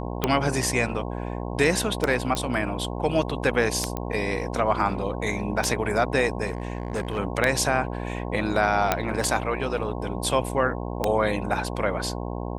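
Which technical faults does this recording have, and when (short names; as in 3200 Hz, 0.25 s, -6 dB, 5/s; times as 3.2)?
buzz 60 Hz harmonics 18 -31 dBFS
tick 33 1/3 rpm -7 dBFS
2.35 pop -12 dBFS
3.97 pop -14 dBFS
6.46–7.19 clipped -23 dBFS
8.92 pop -5 dBFS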